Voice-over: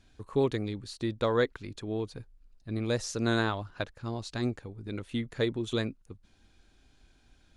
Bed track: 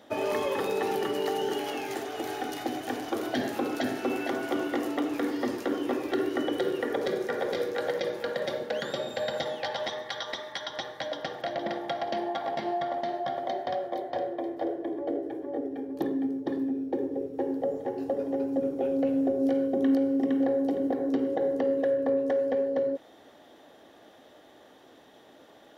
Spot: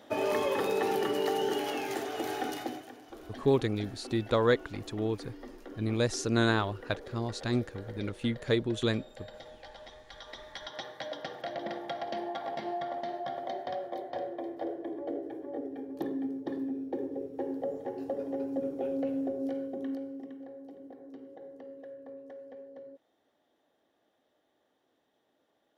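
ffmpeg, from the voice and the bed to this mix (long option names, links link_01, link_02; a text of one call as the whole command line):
ffmpeg -i stem1.wav -i stem2.wav -filter_complex "[0:a]adelay=3100,volume=1.5dB[link_01];[1:a]volume=11.5dB,afade=type=out:start_time=2.48:duration=0.43:silence=0.149624,afade=type=in:start_time=10.04:duration=0.79:silence=0.251189,afade=type=out:start_time=18.9:duration=1.48:silence=0.16788[link_02];[link_01][link_02]amix=inputs=2:normalize=0" out.wav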